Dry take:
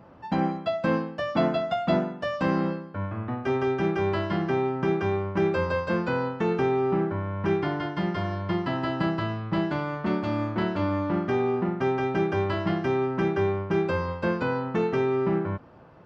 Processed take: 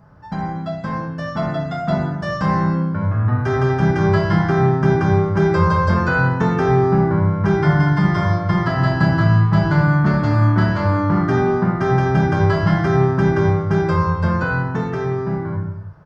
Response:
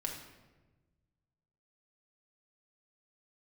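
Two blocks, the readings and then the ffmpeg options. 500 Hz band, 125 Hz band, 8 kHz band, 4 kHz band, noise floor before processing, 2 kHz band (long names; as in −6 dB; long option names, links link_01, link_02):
+5.0 dB, +15.0 dB, can't be measured, +4.0 dB, −42 dBFS, +10.0 dB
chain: -filter_complex "[0:a]firequalizer=gain_entry='entry(140,0);entry(230,-14);entry(1600,-4);entry(2600,-17);entry(5300,-4)':delay=0.05:min_phase=1,dynaudnorm=framelen=430:gausssize=11:maxgain=8.5dB[link_01];[1:a]atrim=start_sample=2205,afade=type=out:start_time=0.41:duration=0.01,atrim=end_sample=18522[link_02];[link_01][link_02]afir=irnorm=-1:irlink=0,volume=8.5dB"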